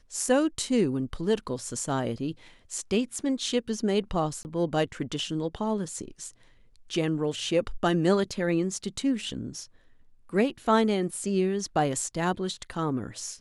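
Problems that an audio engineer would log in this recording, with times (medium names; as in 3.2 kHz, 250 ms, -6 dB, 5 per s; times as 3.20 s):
4.43–4.45 s: dropout 19 ms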